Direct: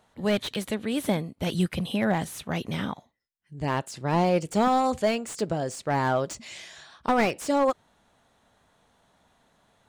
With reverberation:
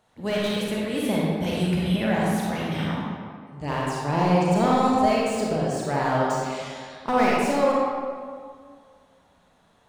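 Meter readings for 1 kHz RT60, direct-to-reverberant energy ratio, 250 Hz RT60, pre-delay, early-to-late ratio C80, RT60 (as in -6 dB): 2.0 s, -5.0 dB, 1.9 s, 33 ms, -0.5 dB, 2.0 s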